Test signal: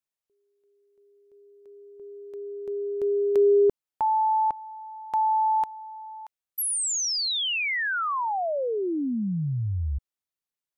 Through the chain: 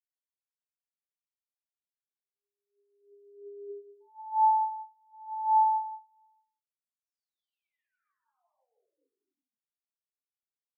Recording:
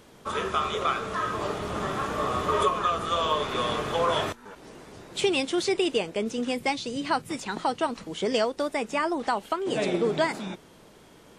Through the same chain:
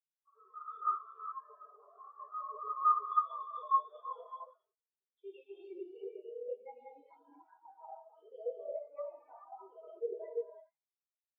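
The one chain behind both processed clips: HPF 520 Hz 12 dB/oct; compressor 2:1, threshold -35 dBFS; non-linear reverb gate 0.49 s flat, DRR -7 dB; spectral expander 4:1; gain -4.5 dB

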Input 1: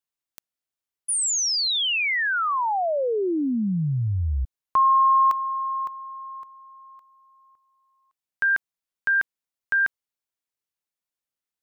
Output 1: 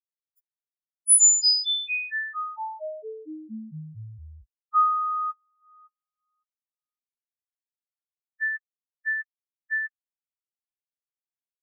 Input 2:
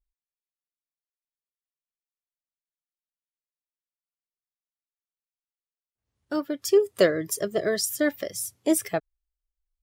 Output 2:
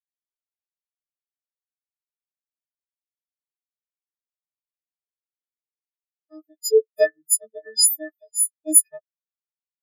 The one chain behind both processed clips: frequency quantiser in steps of 6 st; reverb removal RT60 1.1 s; spectral expander 2.5:1; gain +1 dB

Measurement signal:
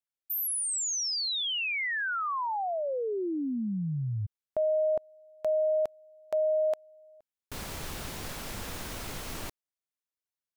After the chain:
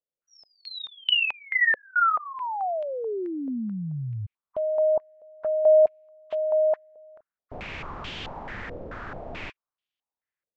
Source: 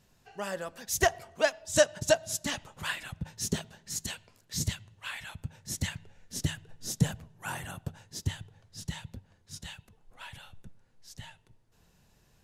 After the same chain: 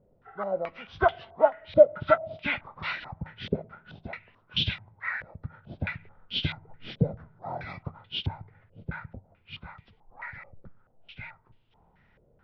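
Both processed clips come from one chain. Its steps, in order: nonlinear frequency compression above 1000 Hz 1.5:1; stepped low-pass 4.6 Hz 530–3100 Hz

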